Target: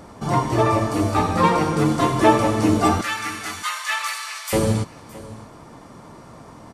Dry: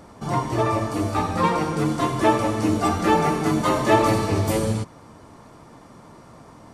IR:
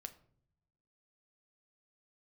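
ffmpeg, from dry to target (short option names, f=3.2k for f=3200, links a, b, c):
-filter_complex "[0:a]asettb=1/sr,asplit=3[a][b][c];[a]atrim=end=3.014[d];[b]atrim=start=3.01:end=4.53,asetpts=PTS-STARTPTS,afade=t=in:d=0.004:c=qsin,afade=t=out:st=1.516:d=0.004:c=qsin,highpass=f=1.4k:w=0.5412,highpass=f=1.4k:w=1.3066[e];[c]atrim=start=4.526[f];[d][e]acrossfade=d=0.004:c1=hsin:c2=qsin[g];[g][f]acrossfade=d=0.004:c1=qsin:c2=hsin,aecho=1:1:615:0.106,volume=3.5dB"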